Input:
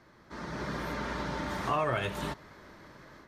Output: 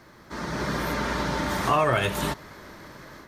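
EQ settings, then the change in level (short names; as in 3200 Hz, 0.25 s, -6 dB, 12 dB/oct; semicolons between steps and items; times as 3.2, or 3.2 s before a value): high shelf 7800 Hz +10.5 dB; +7.5 dB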